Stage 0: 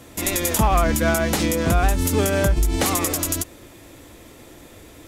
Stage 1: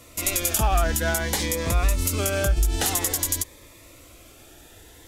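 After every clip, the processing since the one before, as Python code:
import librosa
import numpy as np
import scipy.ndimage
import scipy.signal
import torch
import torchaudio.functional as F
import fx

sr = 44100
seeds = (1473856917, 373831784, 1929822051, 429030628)

y = fx.peak_eq(x, sr, hz=210.0, db=-10.0, octaves=2.1)
y = fx.notch_cascade(y, sr, direction='rising', hz=0.52)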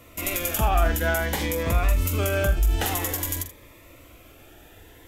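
y = fx.band_shelf(x, sr, hz=6400.0, db=-8.5, octaves=1.7)
y = fx.room_early_taps(y, sr, ms=(44, 79), db=(-10.5, -14.5))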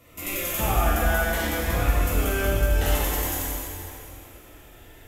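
y = fx.rev_plate(x, sr, seeds[0], rt60_s=2.8, hf_ratio=0.85, predelay_ms=0, drr_db=-6.5)
y = y * 10.0 ** (-6.5 / 20.0)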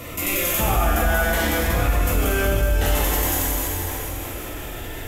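y = fx.env_flatten(x, sr, amount_pct=50)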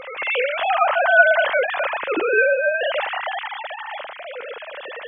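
y = fx.sine_speech(x, sr)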